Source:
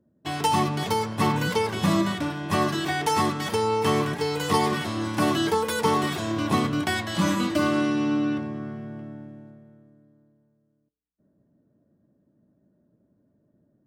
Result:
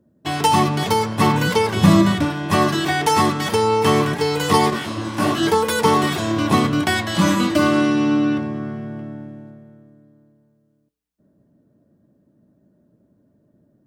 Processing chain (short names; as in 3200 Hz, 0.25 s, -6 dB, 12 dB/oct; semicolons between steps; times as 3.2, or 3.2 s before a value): 1.76–2.25 low shelf 170 Hz +9 dB; 4.7–5.43 detuned doubles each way 59 cents; gain +6.5 dB